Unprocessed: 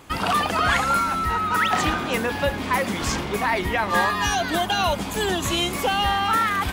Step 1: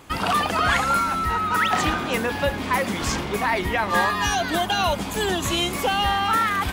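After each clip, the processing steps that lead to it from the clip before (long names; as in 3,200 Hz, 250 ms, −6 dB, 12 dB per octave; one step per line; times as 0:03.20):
no processing that can be heard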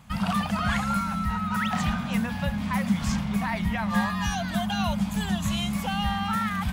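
drawn EQ curve 120 Hz 0 dB, 210 Hz +8 dB, 330 Hz −26 dB, 660 Hz −8 dB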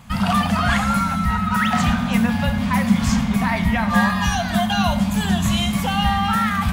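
convolution reverb RT60 0.95 s, pre-delay 4 ms, DRR 7 dB
level +7 dB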